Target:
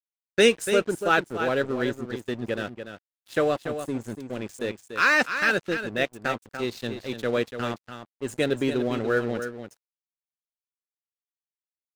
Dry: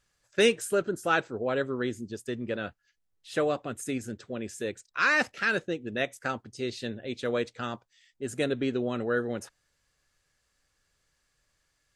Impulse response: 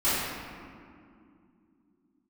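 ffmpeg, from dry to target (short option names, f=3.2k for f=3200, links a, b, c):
-filter_complex "[0:a]asplit=3[a][b][c];[a]afade=t=out:st=3.58:d=0.02[d];[b]equalizer=f=2.6k:t=o:w=2.3:g=-15,afade=t=in:st=3.58:d=0.02,afade=t=out:st=4.03:d=0.02[e];[c]afade=t=in:st=4.03:d=0.02[f];[d][e][f]amix=inputs=3:normalize=0,aeval=exprs='sgn(val(0))*max(abs(val(0))-0.00596,0)':c=same,aecho=1:1:290:0.355,volume=4.5dB"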